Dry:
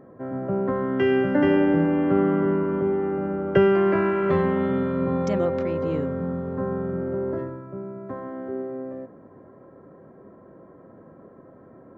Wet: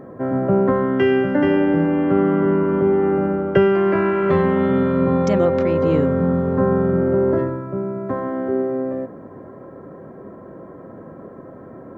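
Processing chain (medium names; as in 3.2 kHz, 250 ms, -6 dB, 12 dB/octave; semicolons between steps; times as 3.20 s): gain riding within 4 dB 0.5 s; trim +6 dB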